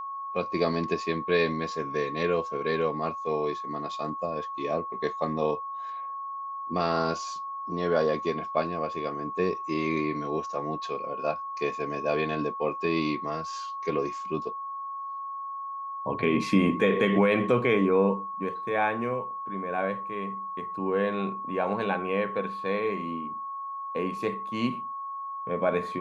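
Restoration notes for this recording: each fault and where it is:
whine 1.1 kHz -33 dBFS

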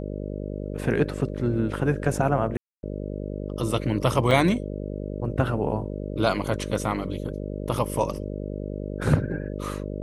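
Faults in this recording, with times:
buzz 50 Hz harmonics 12 -32 dBFS
2.57–2.83 s: dropout 261 ms
4.31 s: dropout 3.1 ms

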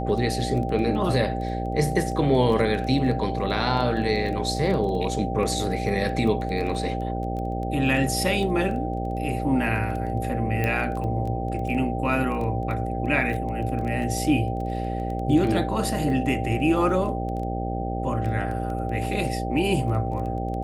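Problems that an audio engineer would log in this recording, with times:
buzz 60 Hz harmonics 11 -29 dBFS
crackle 11 per s -30 dBFS
whine 780 Hz -31 dBFS
10.64 s: pop -13 dBFS

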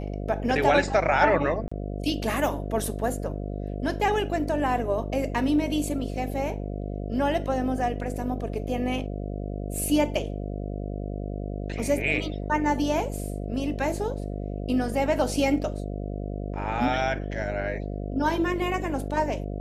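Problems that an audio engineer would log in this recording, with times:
buzz 50 Hz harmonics 14 -32 dBFS
1.68–1.72 s: dropout 35 ms

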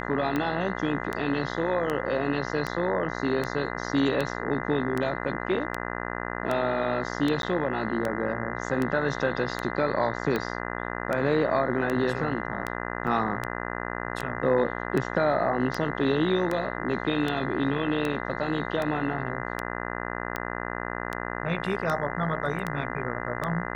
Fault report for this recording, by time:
buzz 60 Hz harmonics 34 -33 dBFS
tick 78 rpm -15 dBFS
7.42–7.43 s: dropout 12 ms
13.07–13.08 s: dropout 5.4 ms

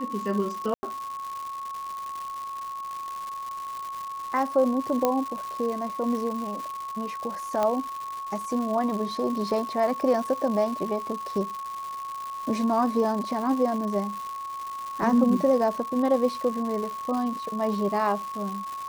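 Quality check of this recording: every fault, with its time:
crackle 320 per s -32 dBFS
whine 1.1 kHz -32 dBFS
0.74–0.83 s: dropout 90 ms
5.05 s: pop -9 dBFS
7.63 s: pop -13 dBFS

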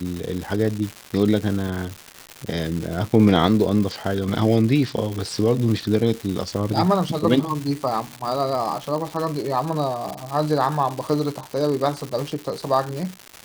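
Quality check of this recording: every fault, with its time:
crackle 340 per s -26 dBFS

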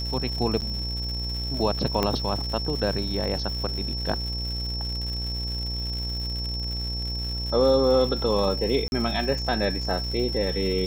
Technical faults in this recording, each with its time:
buzz 60 Hz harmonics 17 -31 dBFS
crackle 200 per s -32 dBFS
whine 5.4 kHz -31 dBFS
0.61–0.62 s: dropout 8.7 ms
2.03 s: pop -9 dBFS
8.88–8.92 s: dropout 41 ms

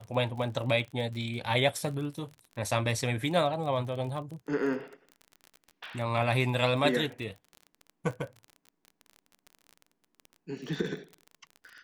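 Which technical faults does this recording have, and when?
crackle 31 per s -37 dBFS

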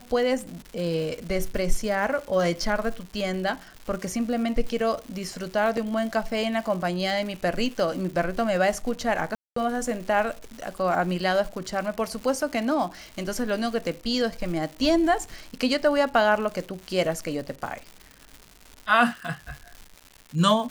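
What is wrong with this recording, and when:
crackle 250 per s -34 dBFS
5.77 s: dropout 3.5 ms
9.35–9.56 s: dropout 214 ms

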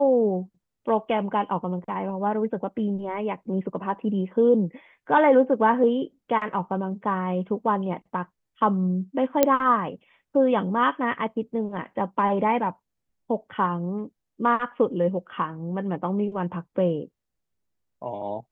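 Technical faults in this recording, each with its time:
9.43 s: pop -4 dBFS

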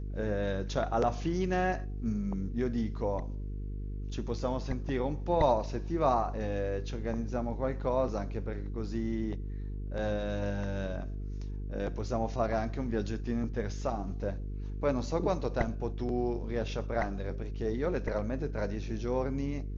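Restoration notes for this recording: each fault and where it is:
buzz 50 Hz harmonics 9 -37 dBFS

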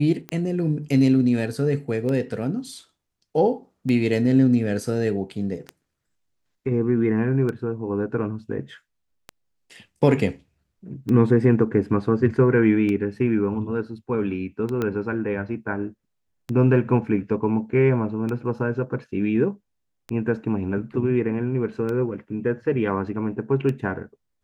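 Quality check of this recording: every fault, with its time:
tick 33 1/3 rpm -17 dBFS
14.82 s: pop -13 dBFS

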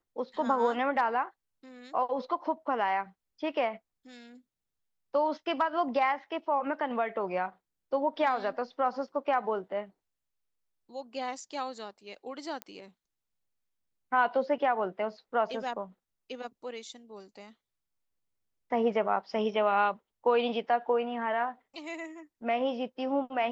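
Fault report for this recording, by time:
12.62 s: pop -21 dBFS

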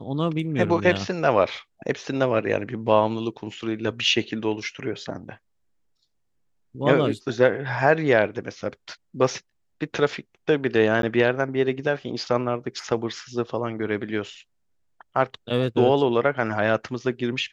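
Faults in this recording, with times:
11.02–11.03 s: dropout

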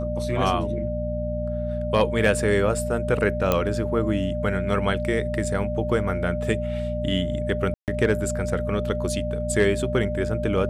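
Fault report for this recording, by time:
hum 60 Hz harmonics 4 -29 dBFS
whine 600 Hz -28 dBFS
3.52 s: pop -7 dBFS
7.74–7.88 s: dropout 138 ms

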